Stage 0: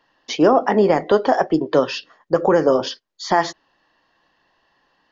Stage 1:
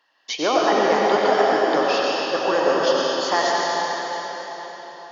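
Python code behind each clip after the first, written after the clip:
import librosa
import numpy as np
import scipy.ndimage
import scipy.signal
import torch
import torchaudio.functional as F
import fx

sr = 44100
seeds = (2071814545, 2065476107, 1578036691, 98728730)

y = fx.highpass(x, sr, hz=1200.0, slope=6)
y = fx.rev_freeverb(y, sr, rt60_s=4.6, hf_ratio=0.9, predelay_ms=55, drr_db=-5.0)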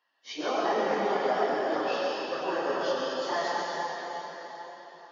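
y = fx.phase_scramble(x, sr, seeds[0], window_ms=100)
y = fx.high_shelf(y, sr, hz=5100.0, db=-8.0)
y = F.gain(torch.from_numpy(y), -9.0).numpy()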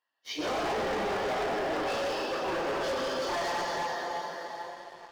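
y = fx.leveller(x, sr, passes=2)
y = np.clip(10.0 ** (23.5 / 20.0) * y, -1.0, 1.0) / 10.0 ** (23.5 / 20.0)
y = F.gain(torch.from_numpy(y), -5.0).numpy()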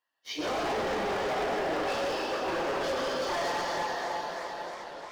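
y = fx.echo_warbled(x, sr, ms=304, feedback_pct=78, rate_hz=2.8, cents=180, wet_db=-13.0)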